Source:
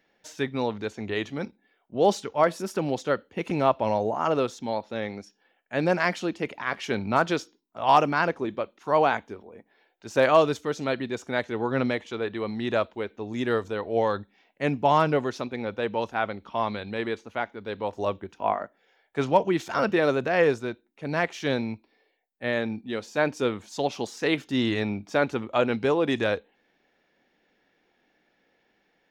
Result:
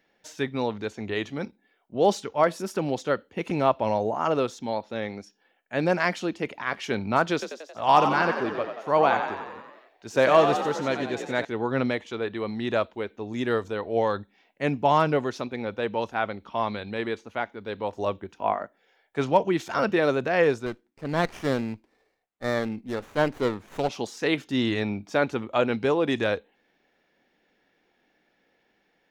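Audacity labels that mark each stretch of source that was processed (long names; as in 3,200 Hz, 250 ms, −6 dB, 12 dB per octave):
7.330000	11.450000	echo with shifted repeats 90 ms, feedback 62%, per repeat +51 Hz, level −7.5 dB
20.660000	23.890000	windowed peak hold over 9 samples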